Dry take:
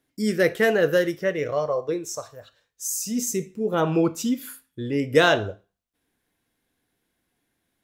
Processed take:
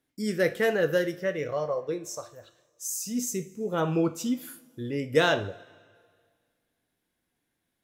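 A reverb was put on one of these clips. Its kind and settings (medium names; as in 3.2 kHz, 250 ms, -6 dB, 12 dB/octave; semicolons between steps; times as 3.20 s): two-slope reverb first 0.3 s, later 1.9 s, from -17 dB, DRR 11 dB; trim -5 dB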